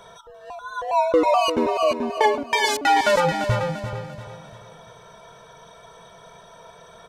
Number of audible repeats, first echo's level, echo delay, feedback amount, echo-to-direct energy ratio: 4, -10.0 dB, 344 ms, 41%, -9.0 dB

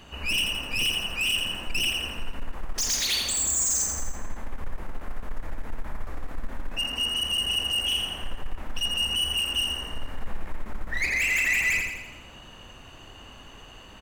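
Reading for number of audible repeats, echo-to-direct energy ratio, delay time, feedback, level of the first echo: 6, -3.0 dB, 84 ms, 53%, -4.5 dB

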